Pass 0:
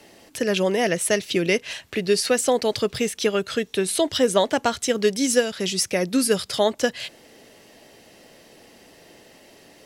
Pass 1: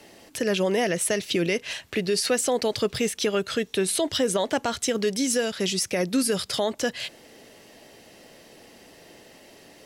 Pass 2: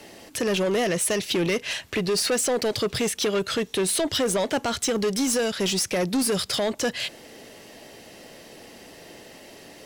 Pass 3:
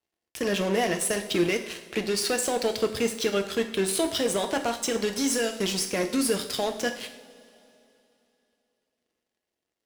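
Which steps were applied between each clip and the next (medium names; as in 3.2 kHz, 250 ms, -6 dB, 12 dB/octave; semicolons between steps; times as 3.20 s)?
peak limiter -14.5 dBFS, peak gain reduction 9.5 dB
saturation -23.5 dBFS, distortion -11 dB; trim +4.5 dB
power-law waveshaper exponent 3; two-slope reverb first 0.53 s, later 3.1 s, from -18 dB, DRR 4.5 dB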